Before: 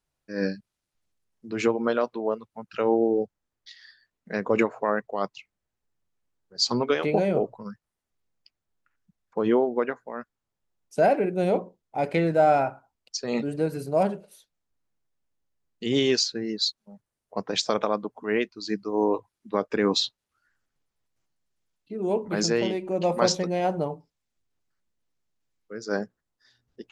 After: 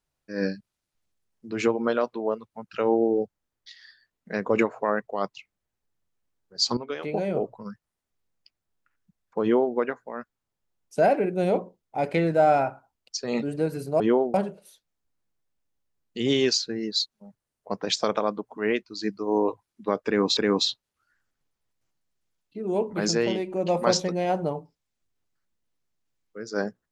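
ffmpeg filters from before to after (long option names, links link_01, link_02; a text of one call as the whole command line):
ffmpeg -i in.wav -filter_complex "[0:a]asplit=5[link_01][link_02][link_03][link_04][link_05];[link_01]atrim=end=6.77,asetpts=PTS-STARTPTS,afade=type=out:start_time=6.766:duration=0.004:curve=hsin:silence=0.223872[link_06];[link_02]atrim=start=6.77:end=14.002,asetpts=PTS-STARTPTS,afade=type=in:duration=0.9:silence=0.223872[link_07];[link_03]atrim=start=9.418:end=9.762[link_08];[link_04]atrim=start=13.998:end=20.032[link_09];[link_05]atrim=start=19.718[link_10];[link_06][link_07]concat=n=2:v=0:a=1[link_11];[link_11][link_08]acrossfade=duration=0.004:curve1=hsin:curve2=hsin[link_12];[link_12][link_09]acrossfade=duration=0.004:curve1=hsin:curve2=hsin[link_13];[link_13][link_10]acrossfade=duration=0.004:curve1=hsin:curve2=hsin" out.wav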